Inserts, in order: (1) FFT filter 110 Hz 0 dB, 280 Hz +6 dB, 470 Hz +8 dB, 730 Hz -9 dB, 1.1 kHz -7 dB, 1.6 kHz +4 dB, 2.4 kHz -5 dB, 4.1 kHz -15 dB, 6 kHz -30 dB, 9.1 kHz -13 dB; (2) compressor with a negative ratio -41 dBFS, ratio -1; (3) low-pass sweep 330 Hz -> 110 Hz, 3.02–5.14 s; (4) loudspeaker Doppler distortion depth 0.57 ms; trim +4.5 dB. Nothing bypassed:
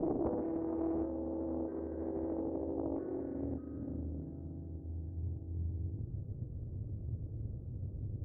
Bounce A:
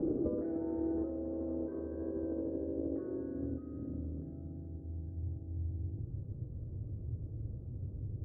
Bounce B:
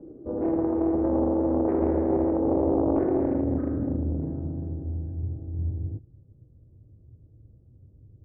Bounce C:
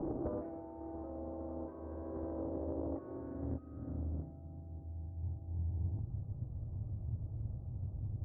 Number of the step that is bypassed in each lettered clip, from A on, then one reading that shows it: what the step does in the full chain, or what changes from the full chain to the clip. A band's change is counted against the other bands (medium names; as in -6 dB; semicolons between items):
4, 1 kHz band -9.0 dB; 2, 125 Hz band -4.5 dB; 1, crest factor change -2.0 dB